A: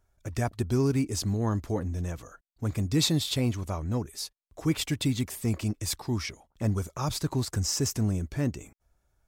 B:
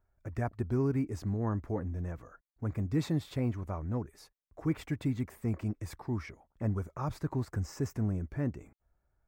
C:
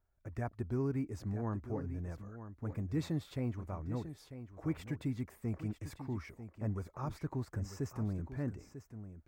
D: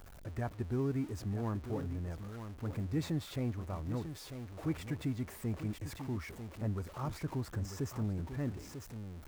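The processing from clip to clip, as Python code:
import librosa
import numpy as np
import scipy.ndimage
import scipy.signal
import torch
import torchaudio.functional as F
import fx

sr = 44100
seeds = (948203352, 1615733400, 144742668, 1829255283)

y1 = fx.band_shelf(x, sr, hz=6200.0, db=-16.0, octaves=2.6)
y1 = F.gain(torch.from_numpy(y1), -4.5).numpy()
y2 = y1 + 10.0 ** (-11.5 / 20.0) * np.pad(y1, (int(945 * sr / 1000.0), 0))[:len(y1)]
y2 = F.gain(torch.from_numpy(y2), -5.0).numpy()
y3 = y2 + 0.5 * 10.0 ** (-46.5 / 20.0) * np.sign(y2)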